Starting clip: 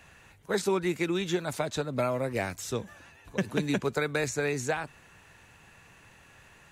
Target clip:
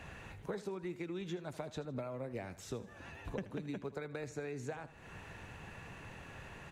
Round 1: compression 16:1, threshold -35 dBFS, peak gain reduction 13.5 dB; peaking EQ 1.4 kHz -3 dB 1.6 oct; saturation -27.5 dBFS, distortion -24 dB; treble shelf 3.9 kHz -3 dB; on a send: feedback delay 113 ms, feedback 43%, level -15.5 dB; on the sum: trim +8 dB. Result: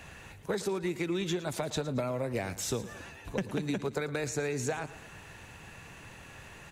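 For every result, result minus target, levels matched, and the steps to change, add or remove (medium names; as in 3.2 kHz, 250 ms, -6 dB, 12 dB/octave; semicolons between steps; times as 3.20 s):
compression: peak gain reduction -9.5 dB; echo 34 ms late; 8 kHz band +6.5 dB
change: compression 16:1, threshold -45 dBFS, peak gain reduction 23 dB; change: feedback delay 79 ms, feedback 43%, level -15.5 dB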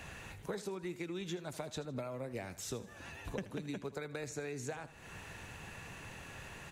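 8 kHz band +7.5 dB
change: treble shelf 3.9 kHz -14 dB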